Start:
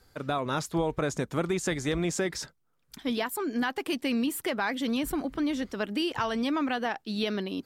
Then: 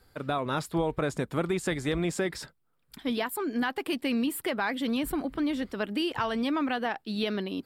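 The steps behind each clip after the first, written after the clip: bell 6200 Hz -10.5 dB 0.38 oct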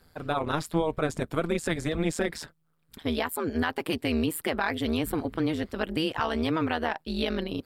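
AM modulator 160 Hz, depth 80%; gain +5 dB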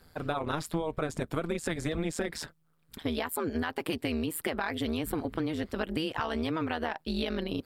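compressor, threshold -29 dBFS, peak gain reduction 9 dB; gain +1.5 dB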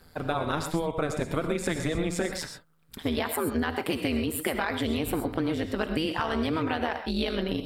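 non-linear reverb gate 0.15 s rising, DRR 6.5 dB; gain +3 dB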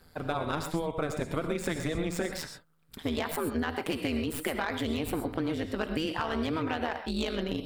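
tracing distortion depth 0.059 ms; gain -3 dB

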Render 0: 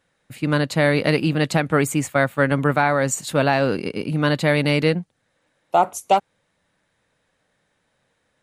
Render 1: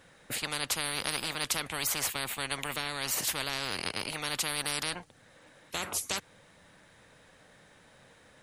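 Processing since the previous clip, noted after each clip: spectral compressor 10:1; gain -8.5 dB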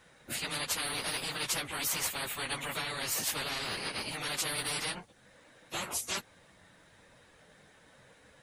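phase scrambler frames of 50 ms; gain -1.5 dB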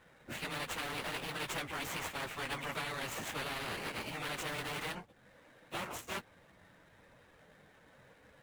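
median filter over 9 samples; gain -1 dB

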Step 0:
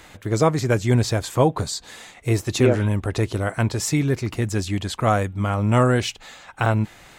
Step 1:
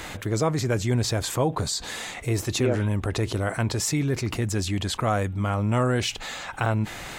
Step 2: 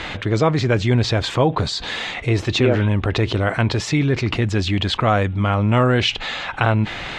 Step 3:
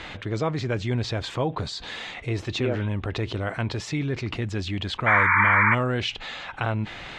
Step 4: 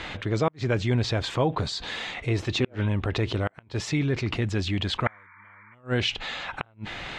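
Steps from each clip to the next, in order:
fast leveller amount 50%; gain -7 dB
synth low-pass 3400 Hz, resonance Q 1.5; gain +6.5 dB
painted sound noise, 5.06–5.75, 870–2400 Hz -10 dBFS; gain -9 dB
flipped gate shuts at -14 dBFS, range -35 dB; gain +2 dB

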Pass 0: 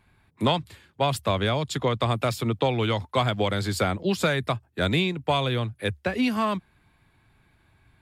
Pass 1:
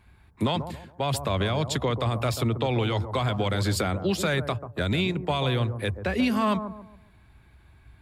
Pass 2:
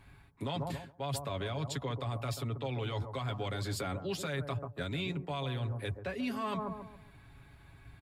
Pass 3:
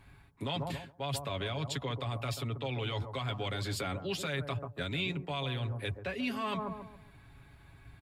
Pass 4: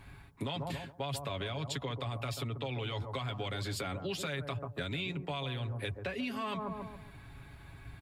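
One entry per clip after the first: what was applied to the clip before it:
bell 62 Hz +13.5 dB 0.64 oct; limiter -18.5 dBFS, peak gain reduction 8.5 dB; analogue delay 0.138 s, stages 1024, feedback 34%, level -9.5 dB; gain +2 dB
comb 7.2 ms, depth 55%; reverse; compressor 6:1, threshold -34 dBFS, peak gain reduction 15 dB; reverse
dynamic EQ 2800 Hz, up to +6 dB, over -58 dBFS, Q 1.3
compressor, threshold -39 dBFS, peak gain reduction 9 dB; gain +5 dB

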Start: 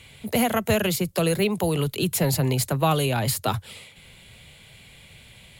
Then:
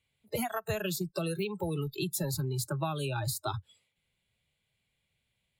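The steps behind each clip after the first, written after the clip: spectral noise reduction 26 dB; compressor, threshold -24 dBFS, peak gain reduction 8.5 dB; gain -5 dB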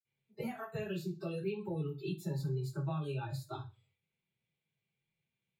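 reverb RT60 0.30 s, pre-delay 46 ms; gain +1 dB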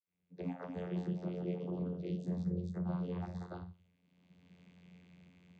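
recorder AGC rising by 29 dB/s; echoes that change speed 0.28 s, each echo +2 st, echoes 2, each echo -6 dB; vocoder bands 16, saw 89 Hz; gain -1 dB

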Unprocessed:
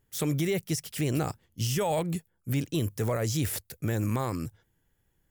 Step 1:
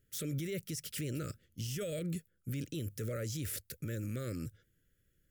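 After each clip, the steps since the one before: elliptic band-stop 580–1300 Hz, stop band 40 dB; limiter -28.5 dBFS, peak gain reduction 10 dB; gain -2 dB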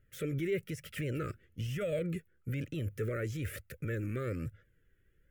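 resonant high shelf 3200 Hz -12 dB, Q 1.5; flange 1.1 Hz, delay 1.4 ms, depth 1.4 ms, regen +39%; gain +8 dB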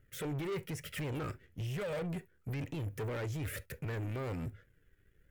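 soft clip -36 dBFS, distortion -11 dB; on a send at -11.5 dB: reverb, pre-delay 3 ms; on the sum: sample leveller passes 1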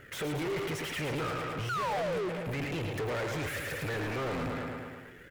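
feedback echo 0.11 s, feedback 58%, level -9 dB; painted sound fall, 1.69–2.29, 340–1500 Hz -36 dBFS; overdrive pedal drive 33 dB, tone 2600 Hz, clips at -27 dBFS

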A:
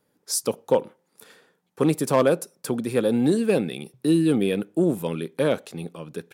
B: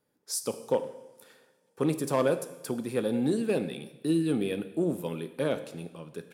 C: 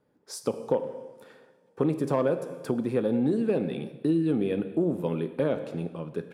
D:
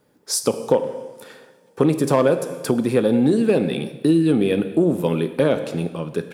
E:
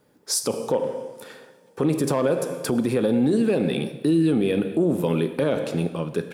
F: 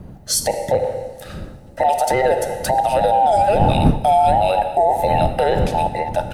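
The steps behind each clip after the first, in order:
reverb, pre-delay 3 ms, DRR 9.5 dB; gain -7 dB
LPF 1200 Hz 6 dB/oct; compressor 2.5:1, threshold -32 dBFS, peak gain reduction 7.5 dB; gain +8 dB
high shelf 2900 Hz +10.5 dB; gain +8 dB
limiter -12.5 dBFS, peak gain reduction 9 dB
band inversion scrambler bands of 1000 Hz; wind noise 170 Hz -30 dBFS; gain +5 dB

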